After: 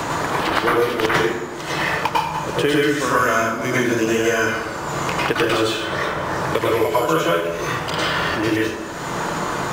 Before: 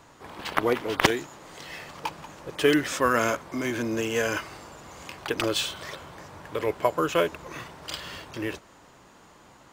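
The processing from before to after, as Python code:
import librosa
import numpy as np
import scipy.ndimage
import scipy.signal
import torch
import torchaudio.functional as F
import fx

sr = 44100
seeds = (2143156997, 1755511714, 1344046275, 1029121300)

p1 = fx.level_steps(x, sr, step_db=14)
p2 = x + (p1 * librosa.db_to_amplitude(0.5))
p3 = fx.rev_plate(p2, sr, seeds[0], rt60_s=0.71, hf_ratio=0.65, predelay_ms=90, drr_db=-9.0)
p4 = fx.band_squash(p3, sr, depth_pct=100)
y = p4 * librosa.db_to_amplitude(-5.5)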